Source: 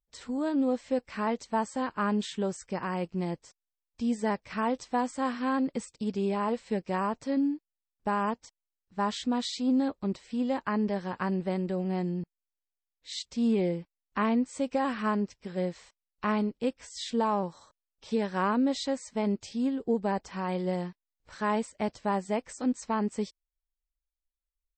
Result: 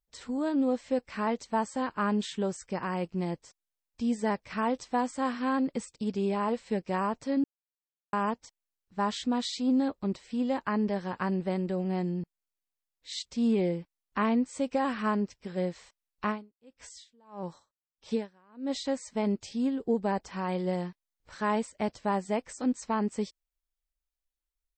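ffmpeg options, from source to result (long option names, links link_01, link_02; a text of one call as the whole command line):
ffmpeg -i in.wav -filter_complex "[0:a]asplit=3[link_01][link_02][link_03];[link_01]afade=type=out:start_time=16.25:duration=0.02[link_04];[link_02]aeval=exprs='val(0)*pow(10,-36*(0.5-0.5*cos(2*PI*1.6*n/s))/20)':channel_layout=same,afade=type=in:start_time=16.25:duration=0.02,afade=type=out:start_time=18.84:duration=0.02[link_05];[link_03]afade=type=in:start_time=18.84:duration=0.02[link_06];[link_04][link_05][link_06]amix=inputs=3:normalize=0,asplit=3[link_07][link_08][link_09];[link_07]atrim=end=7.44,asetpts=PTS-STARTPTS,afade=type=out:start_time=7.436:duration=0.004:curve=hsin[link_10];[link_08]atrim=start=7.44:end=8.13,asetpts=PTS-STARTPTS,volume=0[link_11];[link_09]atrim=start=8.13,asetpts=PTS-STARTPTS,afade=type=in:duration=0.004:curve=hsin[link_12];[link_10][link_11][link_12]concat=n=3:v=0:a=1" out.wav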